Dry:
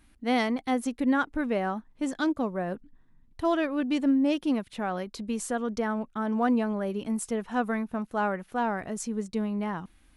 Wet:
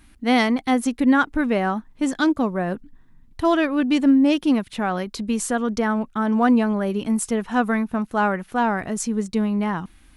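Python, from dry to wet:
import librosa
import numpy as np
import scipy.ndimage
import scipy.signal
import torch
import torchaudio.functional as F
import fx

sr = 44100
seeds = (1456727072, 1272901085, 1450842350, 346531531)

y = fx.peak_eq(x, sr, hz=550.0, db=-3.5, octaves=0.99)
y = y * librosa.db_to_amplitude(8.5)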